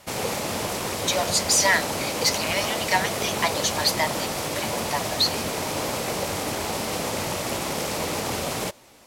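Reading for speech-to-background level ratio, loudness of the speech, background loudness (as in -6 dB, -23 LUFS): 2.5 dB, -24.5 LUFS, -27.0 LUFS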